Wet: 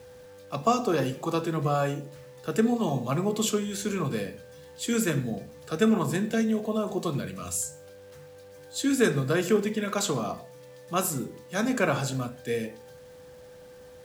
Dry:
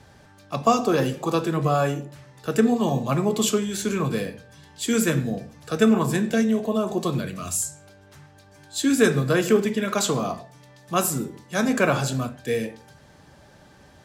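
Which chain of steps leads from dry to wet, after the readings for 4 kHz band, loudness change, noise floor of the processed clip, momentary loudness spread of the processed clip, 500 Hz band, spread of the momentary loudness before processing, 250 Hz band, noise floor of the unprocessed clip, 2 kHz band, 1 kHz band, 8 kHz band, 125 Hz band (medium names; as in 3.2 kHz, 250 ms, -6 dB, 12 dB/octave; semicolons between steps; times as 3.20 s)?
-4.5 dB, -4.5 dB, -49 dBFS, 13 LU, -4.5 dB, 11 LU, -4.5 dB, -52 dBFS, -4.5 dB, -4.5 dB, -4.5 dB, -4.5 dB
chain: bit crusher 9-bit; whistle 500 Hz -42 dBFS; trim -4.5 dB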